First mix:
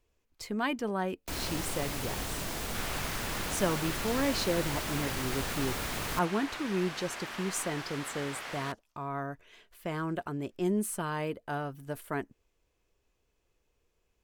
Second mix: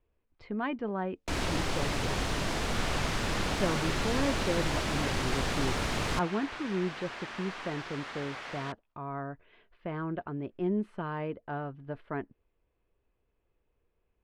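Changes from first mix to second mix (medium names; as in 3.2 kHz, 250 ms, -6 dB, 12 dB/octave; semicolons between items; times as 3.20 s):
speech: add distance through air 380 m; first sound +6.0 dB; master: add distance through air 74 m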